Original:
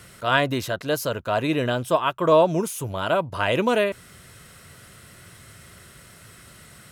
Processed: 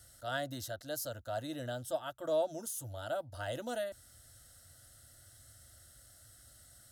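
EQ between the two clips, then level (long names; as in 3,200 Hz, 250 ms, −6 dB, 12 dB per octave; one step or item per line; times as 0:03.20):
phaser with its sweep stopped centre 430 Hz, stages 4
phaser with its sweep stopped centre 1,000 Hz, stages 4
−6.5 dB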